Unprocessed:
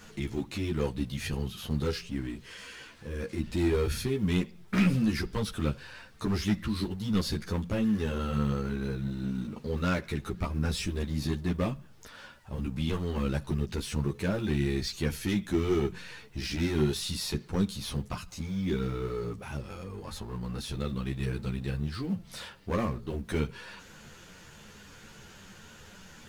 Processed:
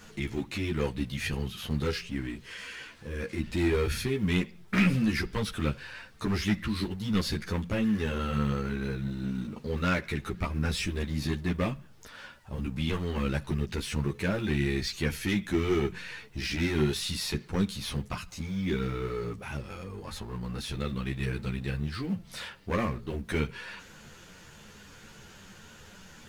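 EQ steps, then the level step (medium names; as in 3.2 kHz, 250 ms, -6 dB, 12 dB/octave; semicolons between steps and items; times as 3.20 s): dynamic bell 2.1 kHz, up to +6 dB, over -53 dBFS, Q 1.2; 0.0 dB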